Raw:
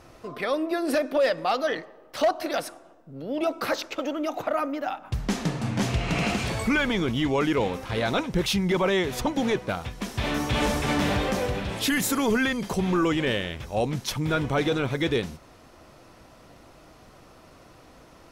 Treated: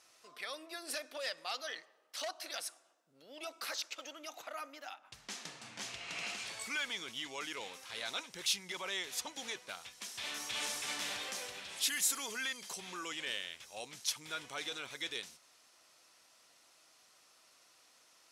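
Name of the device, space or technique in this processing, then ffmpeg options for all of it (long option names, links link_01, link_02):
piezo pickup straight into a mixer: -filter_complex "[0:a]lowpass=8900,aderivative,asettb=1/sr,asplit=3[link_01][link_02][link_03];[link_01]atrim=end=4.944[link_04];[link_02]atrim=start=4.94:end=6.61,asetpts=PTS-STARTPTS,afade=type=in:duration=0.004:curve=qsin,afade=type=out:start_time=1.666:duration=0.004:curve=qsin,highshelf=frequency=5200:gain=-8.5[link_05];[link_03]atrim=start=6.606[link_06];[link_04][link_05]acrossfade=duration=0.004:curve1=hsin:curve2=qsin[link_07];[link_07][link_06]acrossfade=duration=0.004:curve1=qsin:curve2=hsin"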